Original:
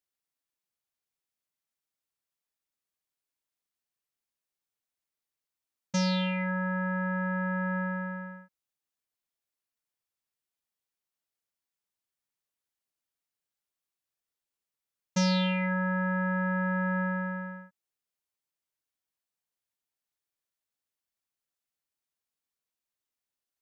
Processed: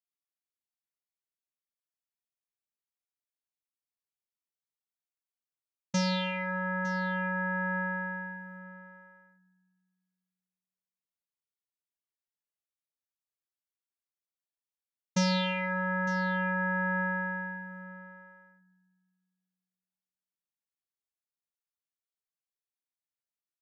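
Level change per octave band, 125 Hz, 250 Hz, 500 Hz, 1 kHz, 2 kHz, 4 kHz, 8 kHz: −3.5 dB, −3.5 dB, −1.0 dB, +1.0 dB, +2.5 dB, 0.0 dB, can't be measured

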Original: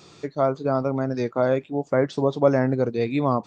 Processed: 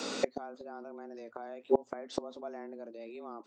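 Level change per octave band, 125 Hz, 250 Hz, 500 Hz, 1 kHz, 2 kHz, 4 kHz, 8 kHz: −32.0 dB, −17.0 dB, −14.0 dB, −14.5 dB, −14.5 dB, −2.5 dB, can't be measured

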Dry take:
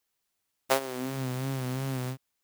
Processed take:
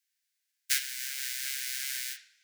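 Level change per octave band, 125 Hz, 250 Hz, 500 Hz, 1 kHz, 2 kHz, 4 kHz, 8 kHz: below −40 dB, below −40 dB, below −40 dB, −24.5 dB, +3.0 dB, +6.5 dB, +9.0 dB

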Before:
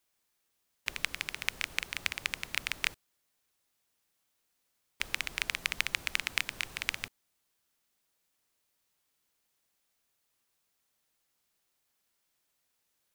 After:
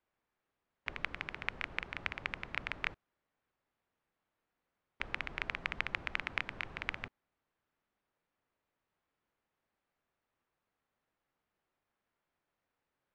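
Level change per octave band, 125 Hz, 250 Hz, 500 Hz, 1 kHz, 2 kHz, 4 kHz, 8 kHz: +1.5 dB, +1.5 dB, +1.5 dB, +0.5 dB, −4.0 dB, −10.5 dB, below −20 dB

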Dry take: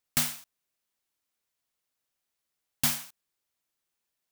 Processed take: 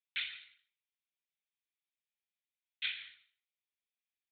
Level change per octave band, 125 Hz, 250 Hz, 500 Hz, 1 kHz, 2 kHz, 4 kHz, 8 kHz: below −35 dB, below −35 dB, below −30 dB, −20.5 dB, −1.5 dB, −4.0 dB, below −40 dB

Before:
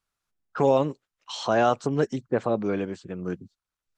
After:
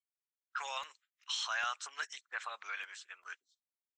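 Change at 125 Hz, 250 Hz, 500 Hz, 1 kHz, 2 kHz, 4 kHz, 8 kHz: below −40 dB, below −40 dB, −31.5 dB, −13.5 dB, −2.0 dB, −1.0 dB, −0.5 dB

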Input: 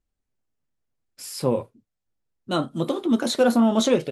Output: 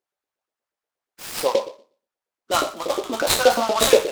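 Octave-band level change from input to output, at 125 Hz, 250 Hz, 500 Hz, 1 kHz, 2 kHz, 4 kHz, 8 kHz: −9.5, −11.0, +4.0, +6.5, +7.5, +7.0, +9.0 decibels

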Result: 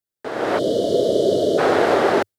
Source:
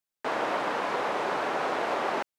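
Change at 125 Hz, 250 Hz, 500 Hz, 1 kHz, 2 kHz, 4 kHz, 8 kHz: +16.5, +15.5, +14.5, +4.5, +5.0, +9.0, +10.0 decibels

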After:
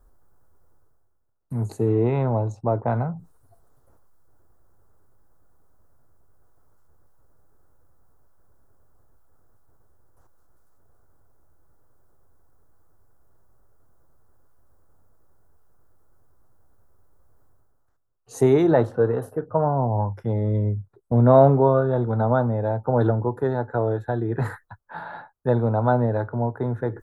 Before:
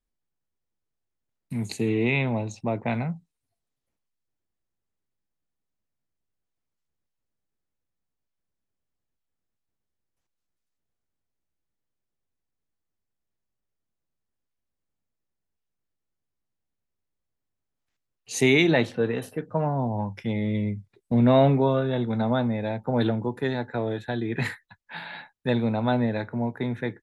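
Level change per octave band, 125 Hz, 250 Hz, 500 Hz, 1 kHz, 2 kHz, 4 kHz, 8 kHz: +5.5 dB, 0.0 dB, +5.0 dB, +5.5 dB, −7.0 dB, below −15 dB, can't be measured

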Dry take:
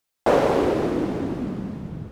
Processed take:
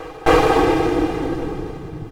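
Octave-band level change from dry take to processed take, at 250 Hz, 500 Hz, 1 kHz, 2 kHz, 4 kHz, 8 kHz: +4.0 dB, +3.5 dB, +7.5 dB, +9.0 dB, +9.0 dB, can't be measured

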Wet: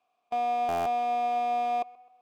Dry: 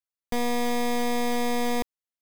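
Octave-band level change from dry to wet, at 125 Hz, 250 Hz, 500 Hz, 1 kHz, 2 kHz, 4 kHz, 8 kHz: can't be measured, −15.5 dB, −2.5 dB, +5.0 dB, −8.5 dB, −12.0 dB, below −15 dB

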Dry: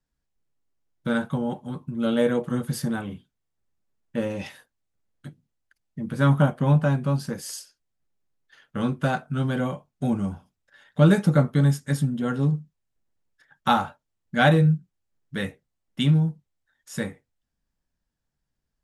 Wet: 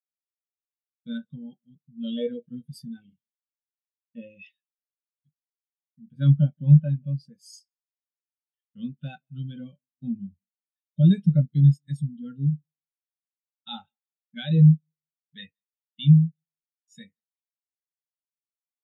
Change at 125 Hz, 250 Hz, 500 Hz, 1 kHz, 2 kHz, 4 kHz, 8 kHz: +2.0 dB, −1.5 dB, −13.0 dB, below −20 dB, below −15 dB, can't be measured, below −15 dB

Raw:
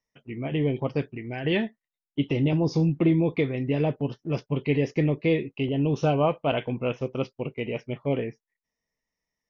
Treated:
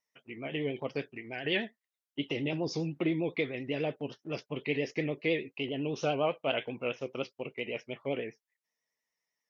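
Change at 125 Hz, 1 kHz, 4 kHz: −14.0, −7.0, −0.5 decibels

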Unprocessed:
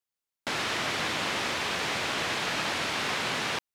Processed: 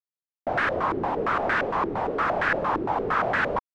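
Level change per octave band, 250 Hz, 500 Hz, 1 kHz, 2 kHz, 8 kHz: +6.0 dB, +9.0 dB, +8.5 dB, +3.0 dB, below −20 dB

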